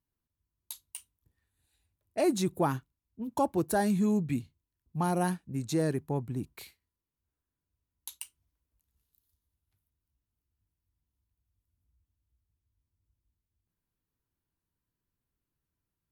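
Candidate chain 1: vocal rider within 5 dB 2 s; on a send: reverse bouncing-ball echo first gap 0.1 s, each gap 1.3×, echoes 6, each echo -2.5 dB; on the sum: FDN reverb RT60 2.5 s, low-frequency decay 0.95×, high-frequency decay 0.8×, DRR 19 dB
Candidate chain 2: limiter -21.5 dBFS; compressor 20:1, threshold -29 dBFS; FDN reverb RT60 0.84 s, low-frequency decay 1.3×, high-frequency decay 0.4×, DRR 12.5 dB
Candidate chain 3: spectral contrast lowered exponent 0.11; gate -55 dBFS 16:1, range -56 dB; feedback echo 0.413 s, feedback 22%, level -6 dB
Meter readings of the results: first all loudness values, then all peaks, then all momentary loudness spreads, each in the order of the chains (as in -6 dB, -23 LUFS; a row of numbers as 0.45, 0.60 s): -29.5, -37.0, -27.5 LUFS; -12.5, -21.0, -9.5 dBFS; 19, 13, 20 LU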